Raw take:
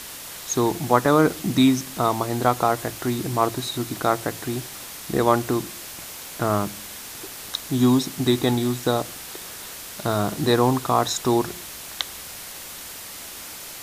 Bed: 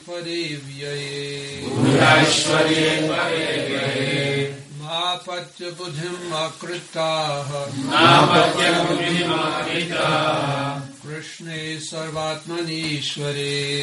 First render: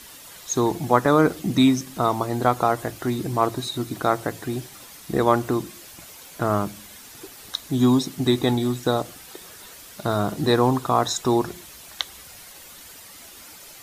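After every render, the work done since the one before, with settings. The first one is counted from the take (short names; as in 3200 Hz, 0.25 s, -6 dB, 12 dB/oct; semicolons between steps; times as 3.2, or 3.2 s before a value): denoiser 9 dB, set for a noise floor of -38 dBFS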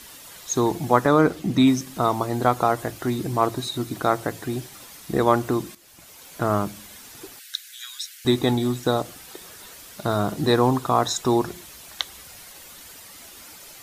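1.06–1.66 high shelf 9100 Hz -> 5000 Hz -7.5 dB; 5.75–6.38 fade in linear, from -13 dB; 7.39–8.25 Chebyshev high-pass 1500 Hz, order 5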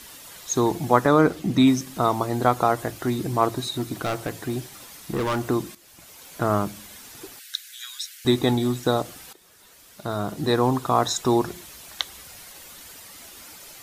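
3.74–5.49 overloaded stage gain 21.5 dB; 9.33–11.04 fade in, from -15 dB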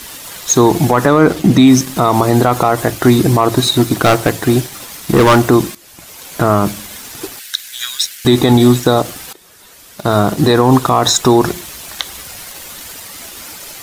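sample leveller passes 1; maximiser +12.5 dB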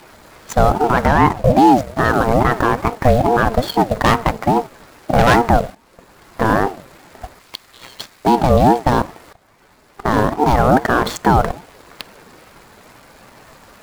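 median filter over 15 samples; ring modulator with a swept carrier 460 Hz, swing 30%, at 2.4 Hz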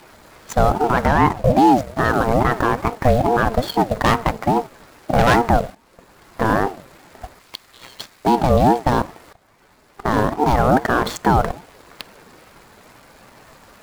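gain -2.5 dB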